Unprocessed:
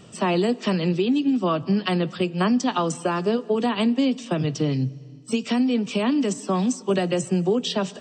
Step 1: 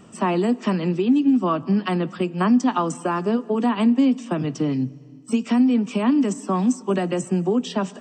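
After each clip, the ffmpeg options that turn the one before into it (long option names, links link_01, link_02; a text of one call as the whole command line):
ffmpeg -i in.wav -af "equalizer=frequency=125:width_type=o:width=1:gain=-6,equalizer=frequency=250:width_type=o:width=1:gain=6,equalizer=frequency=500:width_type=o:width=1:gain=-4,equalizer=frequency=1000:width_type=o:width=1:gain=4,equalizer=frequency=4000:width_type=o:width=1:gain=-9" out.wav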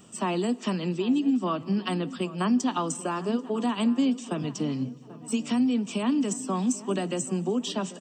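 ffmpeg -i in.wav -filter_complex "[0:a]aexciter=amount=2:drive=6.9:freq=2900,asplit=2[link_01][link_02];[link_02]adelay=788,lowpass=frequency=1900:poles=1,volume=-16.5dB,asplit=2[link_03][link_04];[link_04]adelay=788,lowpass=frequency=1900:poles=1,volume=0.53,asplit=2[link_05][link_06];[link_06]adelay=788,lowpass=frequency=1900:poles=1,volume=0.53,asplit=2[link_07][link_08];[link_08]adelay=788,lowpass=frequency=1900:poles=1,volume=0.53,asplit=2[link_09][link_10];[link_10]adelay=788,lowpass=frequency=1900:poles=1,volume=0.53[link_11];[link_01][link_03][link_05][link_07][link_09][link_11]amix=inputs=6:normalize=0,volume=-6.5dB" out.wav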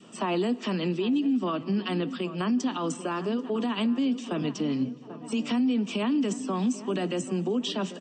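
ffmpeg -i in.wav -af "highpass=200,lowpass=4200,alimiter=limit=-24dB:level=0:latency=1:release=40,adynamicequalizer=threshold=0.00398:dfrequency=850:dqfactor=1:tfrequency=850:tqfactor=1:attack=5:release=100:ratio=0.375:range=2.5:mode=cutabove:tftype=bell,volume=5dB" out.wav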